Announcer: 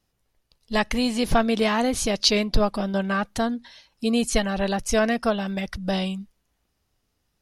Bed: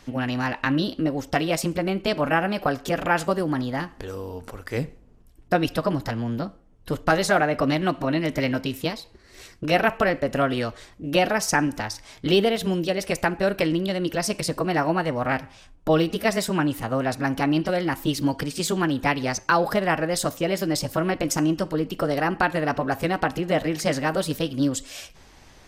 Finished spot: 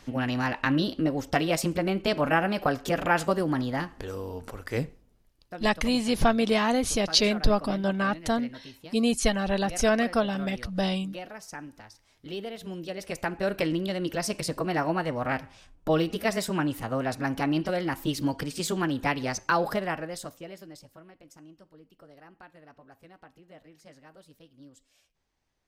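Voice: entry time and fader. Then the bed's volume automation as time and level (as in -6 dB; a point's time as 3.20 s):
4.90 s, -2.0 dB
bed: 4.79 s -2 dB
5.43 s -19.5 dB
12.13 s -19.5 dB
13.55 s -4.5 dB
19.68 s -4.5 dB
21.12 s -29 dB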